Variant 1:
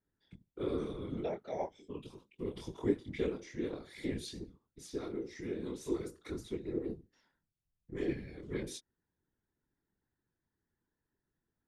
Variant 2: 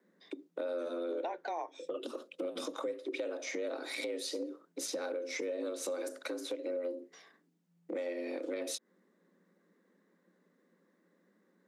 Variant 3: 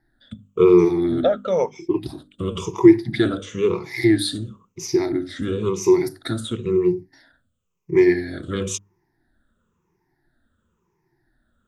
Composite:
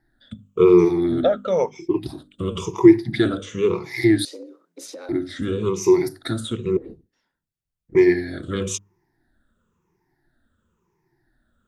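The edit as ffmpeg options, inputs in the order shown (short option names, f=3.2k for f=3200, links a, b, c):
-filter_complex "[2:a]asplit=3[a][b][c];[a]atrim=end=4.252[d];[1:a]atrim=start=4.248:end=5.092[e];[b]atrim=start=5.088:end=6.772[f];[0:a]atrim=start=6.768:end=7.952[g];[c]atrim=start=7.948[h];[d][e]acrossfade=d=0.004:c1=hsin:c2=hsin[i];[i][f]acrossfade=d=0.004:c1=hsin:c2=hsin[j];[j][g]acrossfade=d=0.004:c1=hsin:c2=hsin[k];[k][h]acrossfade=d=0.004:c1=hsin:c2=hsin"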